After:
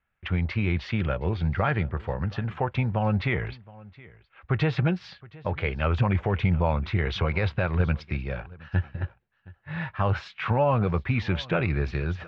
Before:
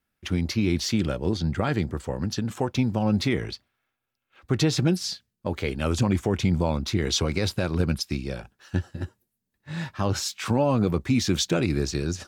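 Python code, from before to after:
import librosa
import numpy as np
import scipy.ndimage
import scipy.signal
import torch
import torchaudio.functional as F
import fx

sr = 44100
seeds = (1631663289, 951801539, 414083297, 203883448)

p1 = scipy.signal.sosfilt(scipy.signal.butter(4, 2600.0, 'lowpass', fs=sr, output='sos'), x)
p2 = fx.peak_eq(p1, sr, hz=280.0, db=-14.5, octaves=1.2)
p3 = p2 + fx.echo_single(p2, sr, ms=719, db=-22.0, dry=0)
y = p3 * 10.0 ** (4.5 / 20.0)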